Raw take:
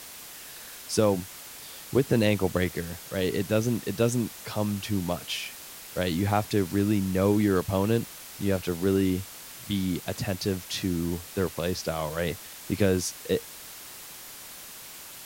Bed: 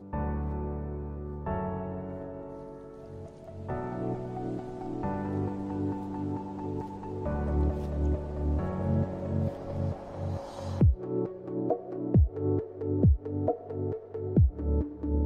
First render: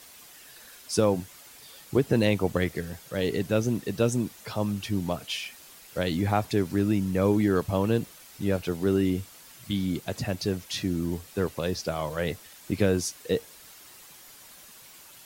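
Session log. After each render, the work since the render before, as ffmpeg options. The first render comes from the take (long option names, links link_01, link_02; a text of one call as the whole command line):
ffmpeg -i in.wav -af "afftdn=noise_reduction=8:noise_floor=-44" out.wav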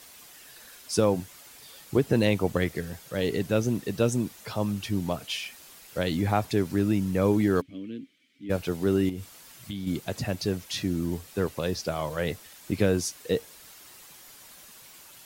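ffmpeg -i in.wav -filter_complex "[0:a]asplit=3[link_01][link_02][link_03];[link_01]afade=type=out:start_time=7.6:duration=0.02[link_04];[link_02]asplit=3[link_05][link_06][link_07];[link_05]bandpass=frequency=270:width_type=q:width=8,volume=0dB[link_08];[link_06]bandpass=frequency=2290:width_type=q:width=8,volume=-6dB[link_09];[link_07]bandpass=frequency=3010:width_type=q:width=8,volume=-9dB[link_10];[link_08][link_09][link_10]amix=inputs=3:normalize=0,afade=type=in:start_time=7.6:duration=0.02,afade=type=out:start_time=8.49:duration=0.02[link_11];[link_03]afade=type=in:start_time=8.49:duration=0.02[link_12];[link_04][link_11][link_12]amix=inputs=3:normalize=0,asettb=1/sr,asplit=3[link_13][link_14][link_15];[link_13]atrim=end=9.094[link_16];[link_14]atrim=start=9.09:end=9.87,asetpts=PTS-STARTPTS,afade=type=in:duration=0.004:curve=qsin,afade=type=out:start_time=0.776:duration=0.004:curve=qsin,acompressor=threshold=-31dB:ratio=4:attack=3.2:release=140:knee=1:detection=peak[link_17];[link_15]atrim=start=9.866[link_18];[link_16][link_17]acrossfade=duration=0.004:curve1=hsin:curve2=qsin[link_19];[link_19][link_18]acrossfade=duration=0.004:curve1=qsin:curve2=hsin" out.wav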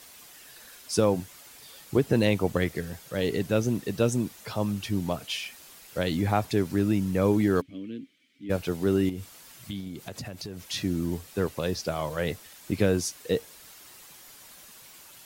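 ffmpeg -i in.wav -filter_complex "[0:a]asettb=1/sr,asplit=3[link_01][link_02][link_03];[link_01]atrim=end=9.804[link_04];[link_02]atrim=start=9.8:end=10.69,asetpts=PTS-STARTPTS,afade=type=in:duration=0.004:curve=qsin,afade=type=out:start_time=0.886:duration=0.004:curve=qsin,acompressor=threshold=-33dB:ratio=12:attack=3.2:release=140:knee=1:detection=peak[link_05];[link_03]atrim=start=10.686[link_06];[link_04][link_05]acrossfade=duration=0.004:curve1=hsin:curve2=qsin[link_07];[link_07][link_06]acrossfade=duration=0.004:curve1=qsin:curve2=hsin" out.wav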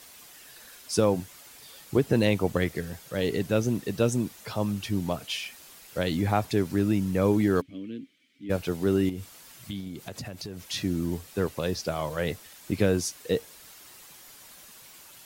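ffmpeg -i in.wav -af anull out.wav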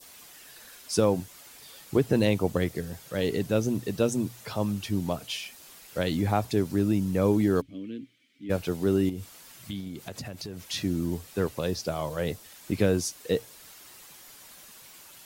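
ffmpeg -i in.wav -af "bandreject=frequency=60:width_type=h:width=6,bandreject=frequency=120:width_type=h:width=6,adynamicequalizer=threshold=0.00501:dfrequency=1900:dqfactor=0.93:tfrequency=1900:tqfactor=0.93:attack=5:release=100:ratio=0.375:range=3:mode=cutabove:tftype=bell" out.wav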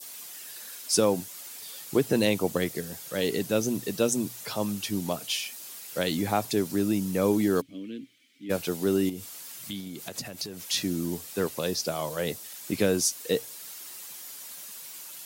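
ffmpeg -i in.wav -af "highpass=160,highshelf=frequency=4000:gain=9.5" out.wav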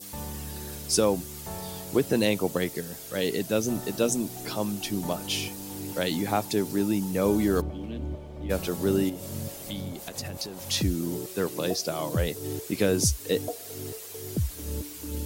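ffmpeg -i in.wav -i bed.wav -filter_complex "[1:a]volume=-6dB[link_01];[0:a][link_01]amix=inputs=2:normalize=0" out.wav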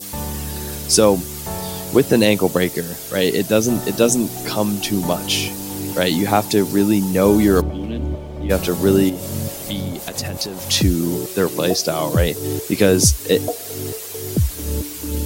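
ffmpeg -i in.wav -af "volume=10dB,alimiter=limit=-1dB:level=0:latency=1" out.wav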